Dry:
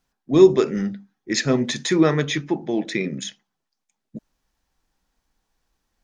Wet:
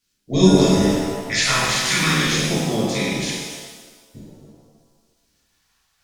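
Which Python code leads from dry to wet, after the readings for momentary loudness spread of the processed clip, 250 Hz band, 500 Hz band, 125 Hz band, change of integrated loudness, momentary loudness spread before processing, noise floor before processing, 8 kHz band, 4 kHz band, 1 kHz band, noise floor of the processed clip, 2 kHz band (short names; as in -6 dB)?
11 LU, +1.5 dB, -2.5 dB, +5.5 dB, +2.0 dB, 15 LU, -80 dBFS, n/a, +8.5 dB, +7.0 dB, -67 dBFS, +7.5 dB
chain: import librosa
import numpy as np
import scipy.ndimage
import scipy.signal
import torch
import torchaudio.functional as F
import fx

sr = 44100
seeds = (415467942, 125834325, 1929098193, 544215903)

p1 = fx.spec_clip(x, sr, under_db=21)
p2 = p1 + fx.echo_single(p1, sr, ms=265, db=-14.0, dry=0)
p3 = fx.vibrato(p2, sr, rate_hz=9.0, depth_cents=11.0)
p4 = fx.peak_eq(p3, sr, hz=230.0, db=4.0, octaves=0.63)
p5 = fx.over_compress(p4, sr, threshold_db=-19.0, ratio=-1.0)
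p6 = p4 + (p5 * 10.0 ** (-3.0 / 20.0))
p7 = fx.phaser_stages(p6, sr, stages=2, low_hz=300.0, high_hz=1400.0, hz=0.47, feedback_pct=35)
p8 = fx.rev_shimmer(p7, sr, seeds[0], rt60_s=1.3, semitones=7, shimmer_db=-8, drr_db=-7.5)
y = p8 * 10.0 ** (-9.0 / 20.0)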